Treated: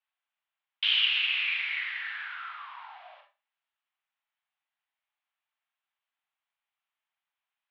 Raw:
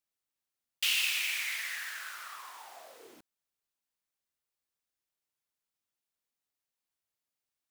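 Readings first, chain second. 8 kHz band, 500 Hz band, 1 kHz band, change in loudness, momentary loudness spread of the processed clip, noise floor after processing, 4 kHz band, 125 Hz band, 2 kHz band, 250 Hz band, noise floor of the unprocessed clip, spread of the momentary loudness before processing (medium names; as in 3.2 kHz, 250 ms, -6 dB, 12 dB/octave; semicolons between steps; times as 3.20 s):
under -30 dB, -5.0 dB, +4.0 dB, +4.0 dB, 20 LU, under -85 dBFS, +6.5 dB, no reading, +4.5 dB, under -30 dB, under -85 dBFS, 20 LU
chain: mistuned SSB +270 Hz 420–3100 Hz; Schroeder reverb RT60 0.31 s, combs from 28 ms, DRR 4 dB; trim +5.5 dB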